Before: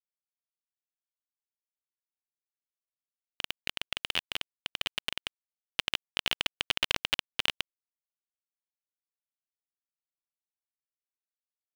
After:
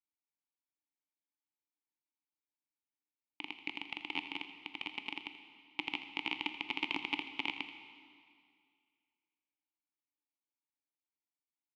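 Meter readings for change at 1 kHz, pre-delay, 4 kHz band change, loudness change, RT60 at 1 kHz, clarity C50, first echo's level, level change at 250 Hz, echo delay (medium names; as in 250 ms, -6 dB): -2.0 dB, 8 ms, -10.0 dB, -7.0 dB, 2.2 s, 8.0 dB, -13.5 dB, +5.0 dB, 82 ms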